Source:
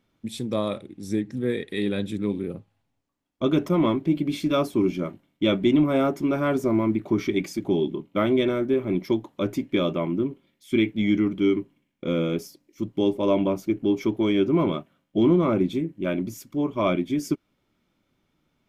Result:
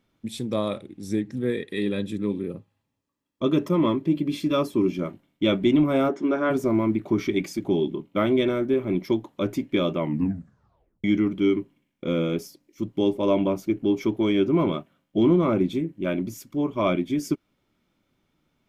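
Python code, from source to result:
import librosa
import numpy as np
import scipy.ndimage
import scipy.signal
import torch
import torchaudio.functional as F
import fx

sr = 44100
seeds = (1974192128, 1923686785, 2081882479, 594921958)

y = fx.notch_comb(x, sr, f0_hz=730.0, at=(1.5, 4.99))
y = fx.cabinet(y, sr, low_hz=210.0, low_slope=24, high_hz=6200.0, hz=(450.0, 1600.0, 2500.0, 4600.0), db=(4, 5, -5, -9), at=(6.08, 6.49), fade=0.02)
y = fx.edit(y, sr, fx.tape_stop(start_s=10.0, length_s=1.04), tone=tone)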